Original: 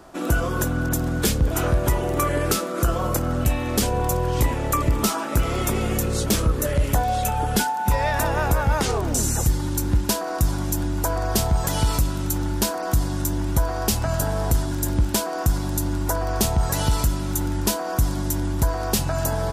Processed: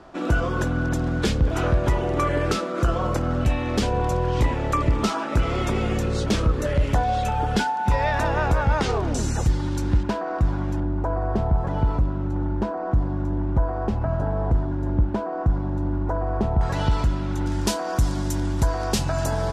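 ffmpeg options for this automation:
-af "asetnsamples=n=441:p=0,asendcmd='10.03 lowpass f 2000;10.8 lowpass f 1100;16.61 lowpass f 3000;17.46 lowpass f 7100',lowpass=4.3k"

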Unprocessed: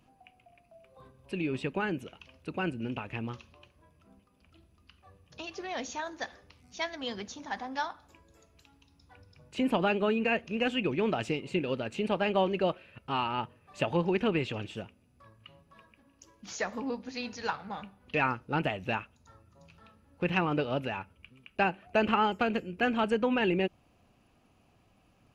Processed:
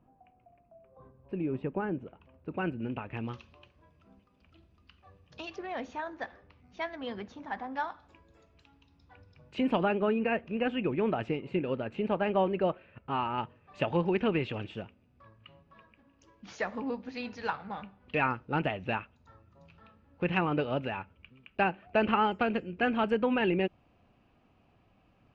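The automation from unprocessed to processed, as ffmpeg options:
-af "asetnsamples=n=441:p=0,asendcmd='2.51 lowpass f 2100;3.17 lowpass f 4500;5.56 lowpass f 2100;7.88 lowpass f 3600;9.83 lowpass f 2000;13.38 lowpass f 3200',lowpass=1.1k"

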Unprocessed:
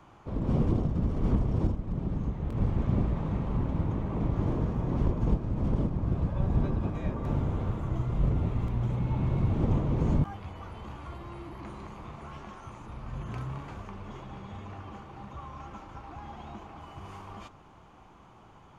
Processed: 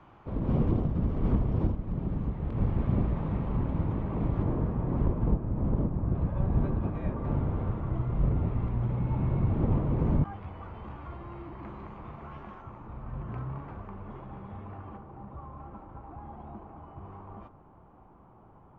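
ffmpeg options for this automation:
-af "asetnsamples=n=441:p=0,asendcmd='4.43 lowpass f 1900;5.28 lowpass f 1500;6.15 lowpass f 2100;12.62 lowpass f 1500;14.97 lowpass f 1000',lowpass=3k"

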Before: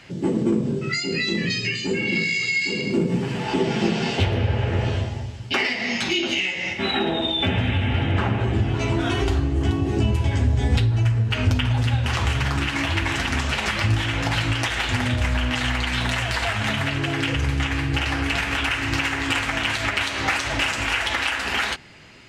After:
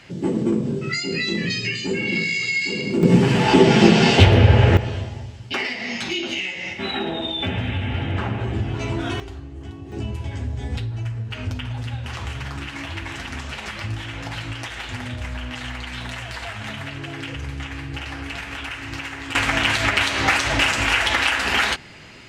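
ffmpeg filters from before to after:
-af "asetnsamples=n=441:p=0,asendcmd='3.03 volume volume 9dB;4.77 volume volume -3dB;9.2 volume volume -14.5dB;9.92 volume volume -8dB;19.35 volume volume 4dB',volume=0dB"

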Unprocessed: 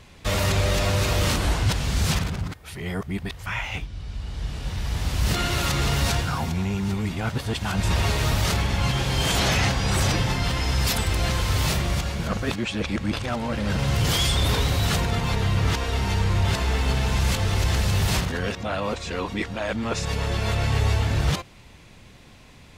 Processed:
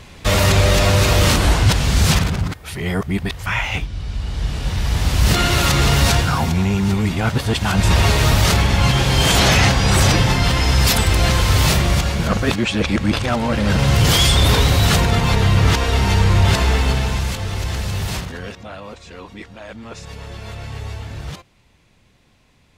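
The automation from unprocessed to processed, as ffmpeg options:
-af "volume=8dB,afade=t=out:st=16.62:d=0.7:silence=0.354813,afade=t=out:st=18.02:d=0.83:silence=0.446684"

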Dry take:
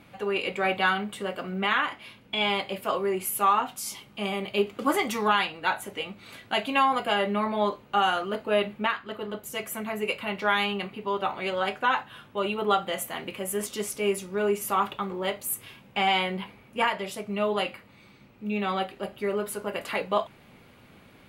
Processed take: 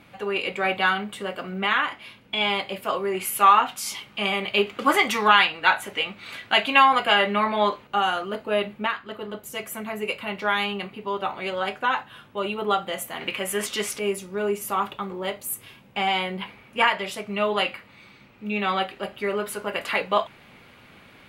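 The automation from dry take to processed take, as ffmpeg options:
-af "asetnsamples=n=441:p=0,asendcmd='3.15 equalizer g 9.5;7.87 equalizer g 1;13.21 equalizer g 11.5;13.99 equalizer g 0;16.41 equalizer g 7',equalizer=f=2.2k:t=o:w=2.9:g=3"

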